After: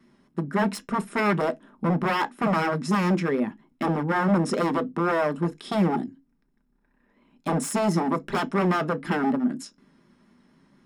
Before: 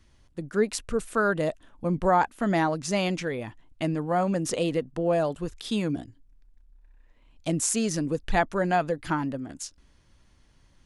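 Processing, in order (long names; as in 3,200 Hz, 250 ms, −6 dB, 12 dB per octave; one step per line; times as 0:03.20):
hollow resonant body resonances 250/4,000 Hz, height 10 dB, ringing for 25 ms
pitch vibrato 4.2 Hz 56 cents
wave folding −21 dBFS
convolution reverb RT60 0.15 s, pre-delay 3 ms, DRR 9 dB
level −4 dB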